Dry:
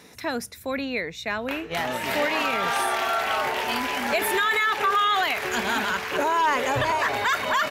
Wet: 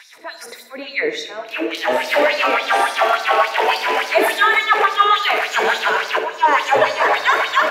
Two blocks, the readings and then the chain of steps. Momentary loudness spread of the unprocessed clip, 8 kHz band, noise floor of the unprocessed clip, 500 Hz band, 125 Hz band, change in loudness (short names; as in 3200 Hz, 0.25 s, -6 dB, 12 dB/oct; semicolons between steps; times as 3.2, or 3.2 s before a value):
8 LU, +1.0 dB, -42 dBFS, +8.5 dB, n/a, +7.5 dB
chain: high shelf 4500 Hz -10 dB; in parallel at -2.5 dB: limiter -25 dBFS, peak gain reduction 10 dB; on the sum: pre-echo 39 ms -17 dB; auto swell 0.345 s; on a send: flutter echo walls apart 10.9 m, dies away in 0.41 s; on the sum: LFO high-pass sine 3.5 Hz 360–5100 Hz; shoebox room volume 980 m³, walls mixed, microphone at 0.62 m; gain +4 dB